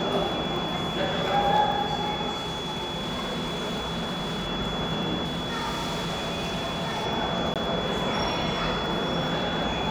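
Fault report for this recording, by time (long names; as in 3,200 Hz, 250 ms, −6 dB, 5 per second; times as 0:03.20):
surface crackle 18 per second −35 dBFS
whistle 3,400 Hz −33 dBFS
0:02.38–0:04.48: clipping −26.5 dBFS
0:05.24–0:07.06: clipping −26 dBFS
0:07.54–0:07.56: drop-out 17 ms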